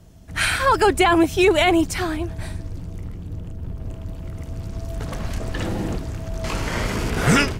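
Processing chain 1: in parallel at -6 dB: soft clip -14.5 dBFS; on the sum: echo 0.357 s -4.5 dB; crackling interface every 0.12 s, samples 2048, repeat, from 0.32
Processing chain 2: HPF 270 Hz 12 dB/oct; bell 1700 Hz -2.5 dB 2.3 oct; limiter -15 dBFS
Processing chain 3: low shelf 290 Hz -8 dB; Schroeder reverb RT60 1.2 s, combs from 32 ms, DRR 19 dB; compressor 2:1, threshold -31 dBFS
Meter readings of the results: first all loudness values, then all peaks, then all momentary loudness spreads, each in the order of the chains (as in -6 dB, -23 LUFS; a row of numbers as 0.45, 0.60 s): -18.0, -26.5, -31.5 LUFS; -2.0, -15.0, -15.5 dBFS; 16, 22, 14 LU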